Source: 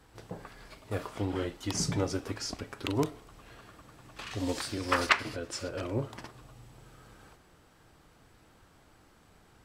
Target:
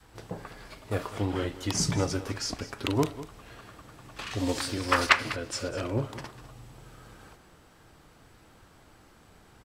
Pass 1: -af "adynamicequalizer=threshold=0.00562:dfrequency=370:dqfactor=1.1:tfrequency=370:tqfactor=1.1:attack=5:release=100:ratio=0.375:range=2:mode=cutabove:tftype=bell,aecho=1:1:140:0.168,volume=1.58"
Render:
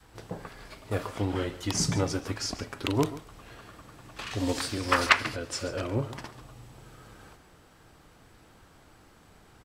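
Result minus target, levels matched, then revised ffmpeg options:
echo 59 ms early
-af "adynamicequalizer=threshold=0.00562:dfrequency=370:dqfactor=1.1:tfrequency=370:tqfactor=1.1:attack=5:release=100:ratio=0.375:range=2:mode=cutabove:tftype=bell,aecho=1:1:199:0.168,volume=1.58"

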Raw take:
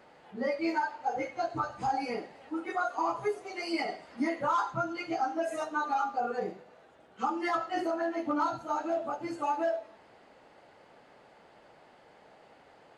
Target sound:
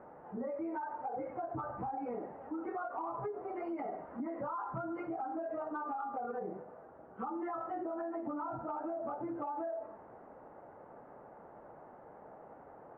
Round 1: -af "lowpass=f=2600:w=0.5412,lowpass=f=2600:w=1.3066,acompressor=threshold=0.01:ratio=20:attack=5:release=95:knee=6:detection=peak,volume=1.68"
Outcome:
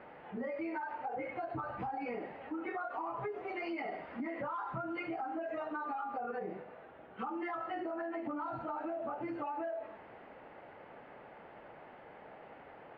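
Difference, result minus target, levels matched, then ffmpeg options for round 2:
2 kHz band +8.0 dB
-af "lowpass=f=1300:w=0.5412,lowpass=f=1300:w=1.3066,acompressor=threshold=0.01:ratio=20:attack=5:release=95:knee=6:detection=peak,volume=1.68"

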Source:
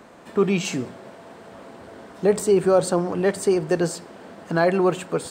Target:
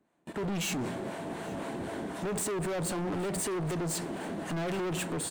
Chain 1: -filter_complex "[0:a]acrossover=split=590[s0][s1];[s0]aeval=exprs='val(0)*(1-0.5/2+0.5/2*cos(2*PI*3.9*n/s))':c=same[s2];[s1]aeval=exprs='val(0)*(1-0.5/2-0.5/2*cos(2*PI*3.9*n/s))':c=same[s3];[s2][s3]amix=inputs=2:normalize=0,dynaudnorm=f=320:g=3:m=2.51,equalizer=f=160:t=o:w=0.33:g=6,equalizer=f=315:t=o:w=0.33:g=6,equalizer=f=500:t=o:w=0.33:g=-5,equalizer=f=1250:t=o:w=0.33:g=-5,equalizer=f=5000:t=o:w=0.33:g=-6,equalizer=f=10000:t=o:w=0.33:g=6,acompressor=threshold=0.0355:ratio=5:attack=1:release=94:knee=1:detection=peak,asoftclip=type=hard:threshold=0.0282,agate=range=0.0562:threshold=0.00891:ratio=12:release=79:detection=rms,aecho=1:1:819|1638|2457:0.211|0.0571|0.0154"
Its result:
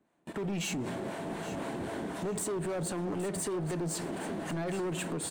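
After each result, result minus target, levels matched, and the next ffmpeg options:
compression: peak gain reduction +6.5 dB; echo-to-direct +9.5 dB
-filter_complex "[0:a]acrossover=split=590[s0][s1];[s0]aeval=exprs='val(0)*(1-0.5/2+0.5/2*cos(2*PI*3.9*n/s))':c=same[s2];[s1]aeval=exprs='val(0)*(1-0.5/2-0.5/2*cos(2*PI*3.9*n/s))':c=same[s3];[s2][s3]amix=inputs=2:normalize=0,dynaudnorm=f=320:g=3:m=2.51,equalizer=f=160:t=o:w=0.33:g=6,equalizer=f=315:t=o:w=0.33:g=6,equalizer=f=500:t=o:w=0.33:g=-5,equalizer=f=1250:t=o:w=0.33:g=-5,equalizer=f=5000:t=o:w=0.33:g=-6,equalizer=f=10000:t=o:w=0.33:g=6,acompressor=threshold=0.0891:ratio=5:attack=1:release=94:knee=1:detection=peak,asoftclip=type=hard:threshold=0.0282,agate=range=0.0562:threshold=0.00891:ratio=12:release=79:detection=rms,aecho=1:1:819|1638|2457:0.211|0.0571|0.0154"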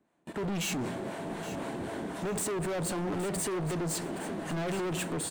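echo-to-direct +9.5 dB
-filter_complex "[0:a]acrossover=split=590[s0][s1];[s0]aeval=exprs='val(0)*(1-0.5/2+0.5/2*cos(2*PI*3.9*n/s))':c=same[s2];[s1]aeval=exprs='val(0)*(1-0.5/2-0.5/2*cos(2*PI*3.9*n/s))':c=same[s3];[s2][s3]amix=inputs=2:normalize=0,dynaudnorm=f=320:g=3:m=2.51,equalizer=f=160:t=o:w=0.33:g=6,equalizer=f=315:t=o:w=0.33:g=6,equalizer=f=500:t=o:w=0.33:g=-5,equalizer=f=1250:t=o:w=0.33:g=-5,equalizer=f=5000:t=o:w=0.33:g=-6,equalizer=f=10000:t=o:w=0.33:g=6,acompressor=threshold=0.0891:ratio=5:attack=1:release=94:knee=1:detection=peak,asoftclip=type=hard:threshold=0.0282,agate=range=0.0562:threshold=0.00891:ratio=12:release=79:detection=rms,aecho=1:1:819|1638:0.0708|0.0191"

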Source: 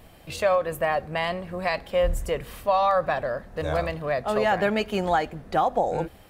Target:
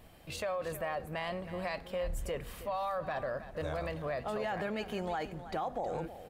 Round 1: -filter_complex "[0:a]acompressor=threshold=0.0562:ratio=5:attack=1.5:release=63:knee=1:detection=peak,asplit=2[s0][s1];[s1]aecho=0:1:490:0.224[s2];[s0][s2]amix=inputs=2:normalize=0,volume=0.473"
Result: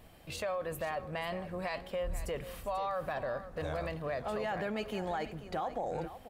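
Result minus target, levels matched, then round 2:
echo 170 ms late
-filter_complex "[0:a]acompressor=threshold=0.0562:ratio=5:attack=1.5:release=63:knee=1:detection=peak,asplit=2[s0][s1];[s1]aecho=0:1:320:0.224[s2];[s0][s2]amix=inputs=2:normalize=0,volume=0.473"

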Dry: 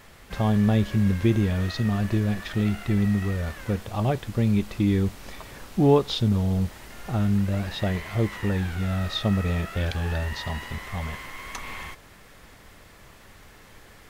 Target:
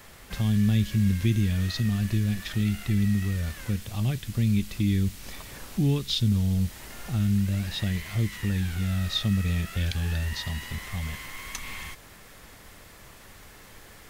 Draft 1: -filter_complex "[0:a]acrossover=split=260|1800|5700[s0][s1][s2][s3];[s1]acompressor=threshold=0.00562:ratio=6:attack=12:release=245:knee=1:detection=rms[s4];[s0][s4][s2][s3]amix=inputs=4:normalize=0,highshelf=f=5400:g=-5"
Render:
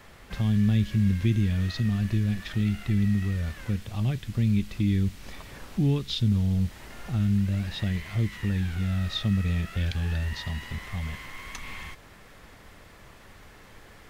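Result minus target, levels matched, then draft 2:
8 kHz band -7.5 dB
-filter_complex "[0:a]acrossover=split=260|1800|5700[s0][s1][s2][s3];[s1]acompressor=threshold=0.00562:ratio=6:attack=12:release=245:knee=1:detection=rms[s4];[s0][s4][s2][s3]amix=inputs=4:normalize=0,highshelf=f=5400:g=6.5"

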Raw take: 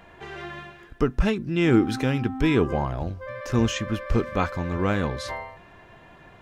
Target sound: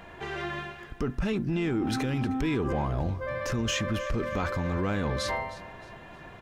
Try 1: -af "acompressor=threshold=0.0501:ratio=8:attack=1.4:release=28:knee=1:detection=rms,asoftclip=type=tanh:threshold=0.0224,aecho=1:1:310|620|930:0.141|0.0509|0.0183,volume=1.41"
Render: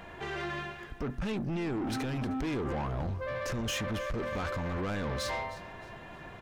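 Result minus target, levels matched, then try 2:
saturation: distortion +15 dB
-af "acompressor=threshold=0.0501:ratio=8:attack=1.4:release=28:knee=1:detection=rms,asoftclip=type=tanh:threshold=0.0891,aecho=1:1:310|620|930:0.141|0.0509|0.0183,volume=1.41"

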